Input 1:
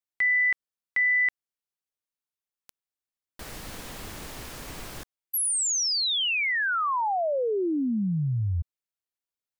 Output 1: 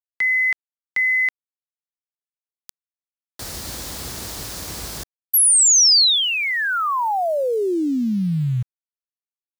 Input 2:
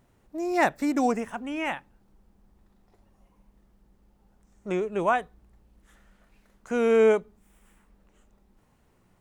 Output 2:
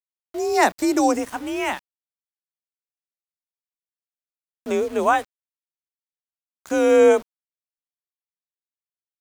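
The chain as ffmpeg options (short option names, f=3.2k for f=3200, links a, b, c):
-af "afreqshift=40,highshelf=f=3.5k:t=q:w=1.5:g=6,aeval=exprs='val(0)*gte(abs(val(0)),0.00794)':c=same,volume=5.5dB"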